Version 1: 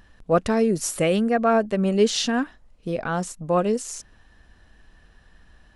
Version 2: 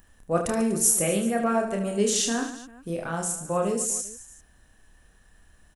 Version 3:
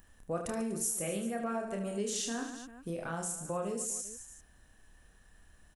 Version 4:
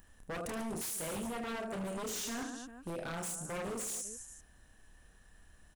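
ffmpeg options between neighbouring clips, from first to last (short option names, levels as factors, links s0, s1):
-af "aexciter=amount=6.5:drive=3.3:freq=6500,aecho=1:1:30|75|142.5|243.8|395.6:0.631|0.398|0.251|0.158|0.1,volume=0.473"
-af "acompressor=threshold=0.0251:ratio=2.5,volume=0.668"
-af "aeval=exprs='0.02*(abs(mod(val(0)/0.02+3,4)-2)-1)':c=same"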